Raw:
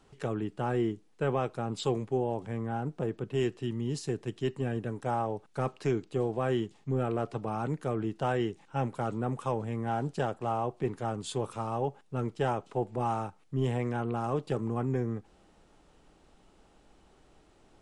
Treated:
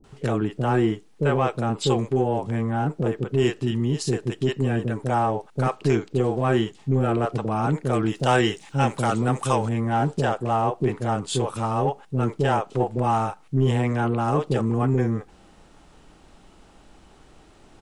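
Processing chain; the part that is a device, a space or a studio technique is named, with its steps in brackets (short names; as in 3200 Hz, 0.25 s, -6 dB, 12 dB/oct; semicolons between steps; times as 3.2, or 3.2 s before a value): 7.89–9.65 high shelf 2200 Hz +11 dB; bands offset in time lows, highs 40 ms, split 480 Hz; parallel distortion (in parallel at -13.5 dB: hard clip -28.5 dBFS, distortion -12 dB); on the sum: gain +8.5 dB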